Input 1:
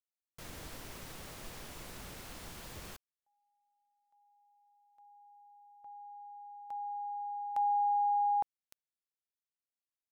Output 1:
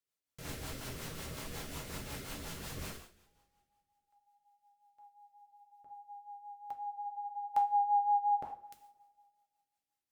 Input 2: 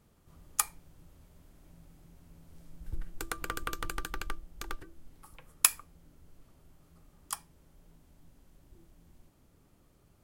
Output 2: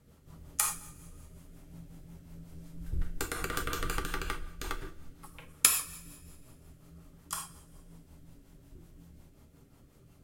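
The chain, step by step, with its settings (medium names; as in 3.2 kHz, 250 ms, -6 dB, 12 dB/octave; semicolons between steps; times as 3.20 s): two-slope reverb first 0.46 s, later 1.9 s, from -21 dB, DRR 1 dB; rotary cabinet horn 5.5 Hz; trim +4 dB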